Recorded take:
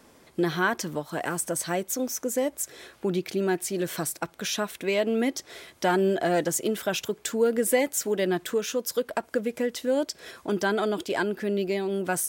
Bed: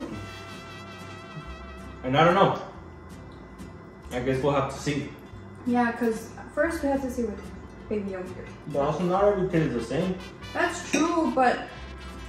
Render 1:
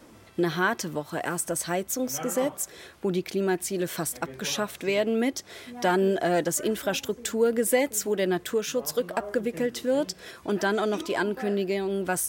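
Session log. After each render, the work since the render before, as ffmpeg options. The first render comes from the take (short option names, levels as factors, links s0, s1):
-filter_complex "[1:a]volume=0.133[s0];[0:a][s0]amix=inputs=2:normalize=0"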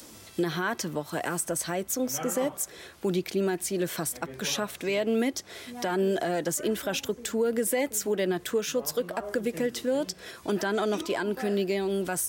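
-filter_complex "[0:a]acrossover=split=110|3600[s0][s1][s2];[s2]acompressor=mode=upward:threshold=0.0112:ratio=2.5[s3];[s0][s1][s3]amix=inputs=3:normalize=0,alimiter=limit=0.126:level=0:latency=1:release=86"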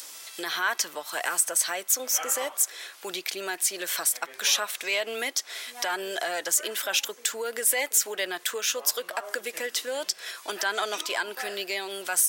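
-af "highpass=500,tiltshelf=f=700:g=-8"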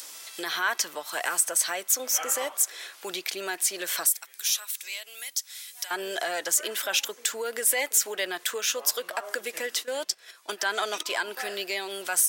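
-filter_complex "[0:a]asettb=1/sr,asplit=3[s0][s1][s2];[s0]atrim=end=4.064[s3];[s1]atrim=start=4.06:end=5.91,asetpts=PTS-STARTPTS,afade=t=in:d=0.004:c=qsin,afade=t=out:st=1.846:d=0.004:c=qsin,aderivative[s4];[s2]atrim=start=5.906[s5];[s3][s4]acrossfade=d=0.004:c1=hsin:c2=qsin[s6];[s6][s5]acrossfade=d=0.004:c1=qsin:c2=hsin,asplit=3[s7][s8][s9];[s7]afade=t=out:st=9.82:d=0.02[s10];[s8]agate=range=0.224:threshold=0.0178:ratio=16:release=100:detection=peak,afade=t=in:st=9.82:d=0.02,afade=t=out:st=11.05:d=0.02[s11];[s9]afade=t=in:st=11.05:d=0.02[s12];[s10][s11][s12]amix=inputs=3:normalize=0"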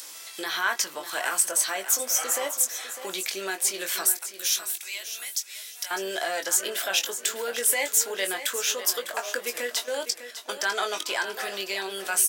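-filter_complex "[0:a]asplit=2[s0][s1];[s1]adelay=21,volume=0.447[s2];[s0][s2]amix=inputs=2:normalize=0,asplit=2[s3][s4];[s4]aecho=0:1:602|1204|1806:0.266|0.0692|0.018[s5];[s3][s5]amix=inputs=2:normalize=0"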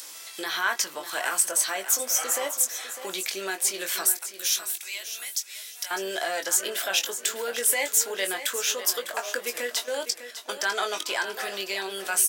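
-af anull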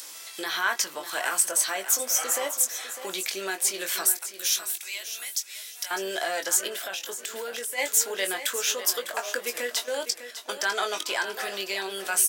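-filter_complex "[0:a]asplit=3[s0][s1][s2];[s0]afade=t=out:st=6.67:d=0.02[s3];[s1]acompressor=threshold=0.0316:ratio=6:attack=3.2:release=140:knee=1:detection=peak,afade=t=in:st=6.67:d=0.02,afade=t=out:st=7.77:d=0.02[s4];[s2]afade=t=in:st=7.77:d=0.02[s5];[s3][s4][s5]amix=inputs=3:normalize=0"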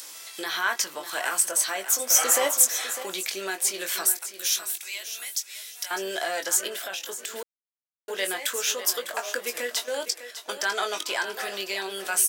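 -filter_complex "[0:a]asettb=1/sr,asplit=3[s0][s1][s2];[s0]atrim=end=2.104[s3];[s1]atrim=start=2.1:end=3.03,asetpts=PTS-STARTPTS,afade=t=in:d=0.004:c=qsin,afade=t=out:st=0.926:d=0.004:c=qsin,acontrast=43[s4];[s2]atrim=start=3.026[s5];[s3][s4]acrossfade=d=0.004:c1=hsin:c2=qsin[s6];[s6][s5]acrossfade=d=0.004:c1=qsin:c2=hsin,asettb=1/sr,asplit=3[s7][s8][s9];[s7]atrim=end=10.084[s10];[s8]atrim=start=10.08:end=10.48,asetpts=PTS-STARTPTS,afade=t=in:d=0.004:c=qsin,afade=t=out:st=0.396:d=0.004:c=qsin,highpass=f=280:w=0.5412,highpass=f=280:w=1.3066[s11];[s9]atrim=start=10.476[s12];[s10][s11]acrossfade=d=0.004:c1=hsin:c2=qsin[s13];[s13][s12]acrossfade=d=0.004:c1=qsin:c2=hsin,asplit=3[s14][s15][s16];[s14]atrim=end=7.43,asetpts=PTS-STARTPTS,afade=t=out:st=7.426:d=0.004:c=hsin[s17];[s15]atrim=start=7.43:end=8.08,asetpts=PTS-STARTPTS,volume=0[s18];[s16]atrim=start=8.08,asetpts=PTS-STARTPTS,afade=t=in:d=0.004:c=hsin[s19];[s17][s18][s19]concat=n=3:v=0:a=1"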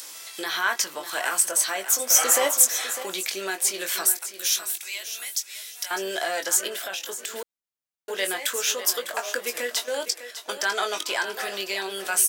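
-af "volume=1.19"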